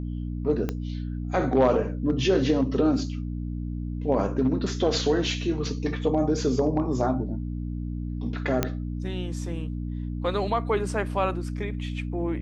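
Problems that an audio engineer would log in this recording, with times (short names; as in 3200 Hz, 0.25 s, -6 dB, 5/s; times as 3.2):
hum 60 Hz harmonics 5 -31 dBFS
0.69 pop -15 dBFS
8.63 pop -8 dBFS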